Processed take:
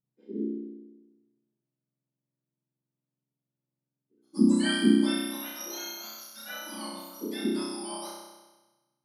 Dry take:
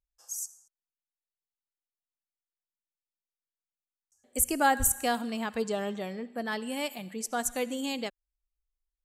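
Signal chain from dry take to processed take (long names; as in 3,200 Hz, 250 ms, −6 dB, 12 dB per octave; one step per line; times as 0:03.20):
frequency axis turned over on the octave scale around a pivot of 1,600 Hz
flutter between parallel walls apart 5.5 metres, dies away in 1.2 s
level −7 dB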